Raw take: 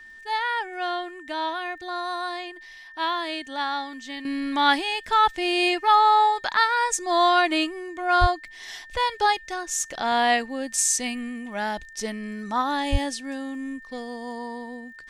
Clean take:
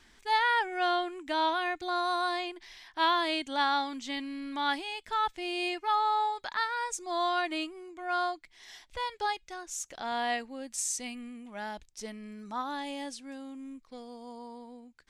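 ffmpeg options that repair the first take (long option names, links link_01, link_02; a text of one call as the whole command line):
ffmpeg -i in.wav -filter_complex "[0:a]adeclick=threshold=4,bandreject=frequency=1800:width=30,asplit=3[link_01][link_02][link_03];[link_01]afade=type=out:start_time=8.2:duration=0.02[link_04];[link_02]highpass=frequency=140:width=0.5412,highpass=frequency=140:width=1.3066,afade=type=in:start_time=8.2:duration=0.02,afade=type=out:start_time=8.32:duration=0.02[link_05];[link_03]afade=type=in:start_time=8.32:duration=0.02[link_06];[link_04][link_05][link_06]amix=inputs=3:normalize=0,asplit=3[link_07][link_08][link_09];[link_07]afade=type=out:start_time=12.91:duration=0.02[link_10];[link_08]highpass=frequency=140:width=0.5412,highpass=frequency=140:width=1.3066,afade=type=in:start_time=12.91:duration=0.02,afade=type=out:start_time=13.03:duration=0.02[link_11];[link_09]afade=type=in:start_time=13.03:duration=0.02[link_12];[link_10][link_11][link_12]amix=inputs=3:normalize=0,asetnsamples=nb_out_samples=441:pad=0,asendcmd='4.25 volume volume -10.5dB',volume=0dB" out.wav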